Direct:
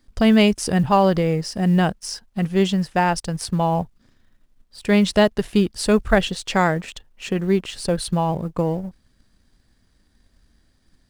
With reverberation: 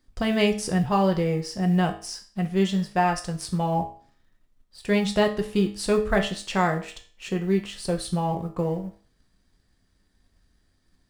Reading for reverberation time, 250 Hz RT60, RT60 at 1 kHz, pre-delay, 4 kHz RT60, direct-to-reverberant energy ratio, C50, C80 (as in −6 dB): 0.45 s, 0.45 s, 0.45 s, 4 ms, 0.40 s, 3.0 dB, 11.5 dB, 15.5 dB